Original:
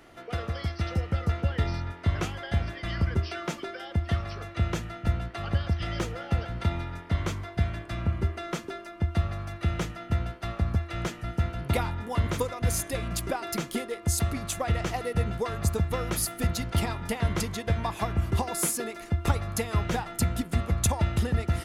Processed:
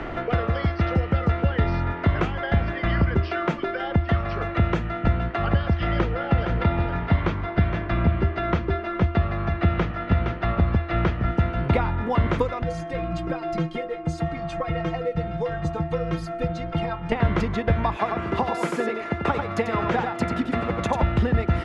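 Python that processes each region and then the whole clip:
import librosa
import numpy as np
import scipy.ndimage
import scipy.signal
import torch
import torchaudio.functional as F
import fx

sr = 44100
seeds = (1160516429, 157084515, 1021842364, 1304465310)

y = fx.chain(x, sr, fx.lowpass(hz=5800.0, slope=24),
    fx.echo_single(ms=465, db=-8.0), at=(5.91, 11.3))
y = fx.chain(y, sr, fx.lowpass(hz=8800.0, slope=12),
    fx.stiff_resonator(f0_hz=160.0, decay_s=0.2, stiffness=0.008), at=(12.63, 17.12))
y = fx.chain(y, sr, fx.highpass(hz=290.0, slope=12),
    fx.echo_single(ms=91, db=-5.5), at=(17.96, 21.03))
y = scipy.signal.sosfilt(scipy.signal.butter(2, 2300.0, 'lowpass', fs=sr, output='sos'), y)
y = fx.peak_eq(y, sr, hz=94.0, db=-5.0, octaves=0.66)
y = fx.band_squash(y, sr, depth_pct=70)
y = y * 10.0 ** (8.0 / 20.0)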